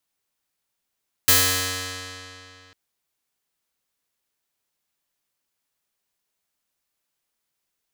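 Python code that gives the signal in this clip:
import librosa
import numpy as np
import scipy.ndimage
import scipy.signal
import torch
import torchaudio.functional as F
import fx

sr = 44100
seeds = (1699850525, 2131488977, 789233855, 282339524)

y = fx.pluck(sr, length_s=1.45, note=42, decay_s=2.8, pick=0.48, brightness='bright')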